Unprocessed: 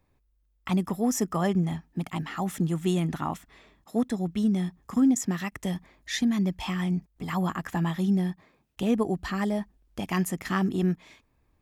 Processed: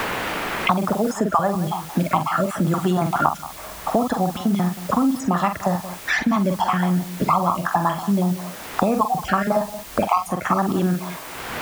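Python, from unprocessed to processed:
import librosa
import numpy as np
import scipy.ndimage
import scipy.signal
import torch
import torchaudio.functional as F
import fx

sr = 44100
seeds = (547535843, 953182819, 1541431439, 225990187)

p1 = fx.spec_dropout(x, sr, seeds[0], share_pct=33)
p2 = scipy.signal.sosfilt(scipy.signal.butter(2, 9300.0, 'lowpass', fs=sr, output='sos'), p1)
p3 = fx.doubler(p2, sr, ms=45.0, db=-8.0)
p4 = fx.over_compress(p3, sr, threshold_db=-29.0, ratio=-1.0)
p5 = p3 + F.gain(torch.from_numpy(p4), -1.0).numpy()
p6 = scipy.signal.sosfilt(scipy.signal.butter(2, 50.0, 'highpass', fs=sr, output='sos'), p5)
p7 = fx.band_shelf(p6, sr, hz=920.0, db=13.0, octaves=1.7)
p8 = fx.notch(p7, sr, hz=1900.0, q=13.0)
p9 = p8 + fx.echo_single(p8, sr, ms=176, db=-18.0, dry=0)
p10 = fx.dmg_noise_colour(p9, sr, seeds[1], colour='white', level_db=-42.0)
p11 = fx.band_squash(p10, sr, depth_pct=100)
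y = F.gain(torch.from_numpy(p11), -1.0).numpy()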